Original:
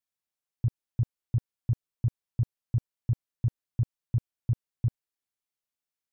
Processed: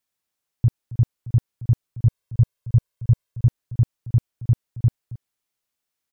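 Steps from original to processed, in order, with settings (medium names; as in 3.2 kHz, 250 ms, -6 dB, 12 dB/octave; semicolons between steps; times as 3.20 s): 2.06–3.47 s: comb 1.9 ms, depth 54%; on a send: delay 273 ms -17 dB; on the sum: trim +8.5 dB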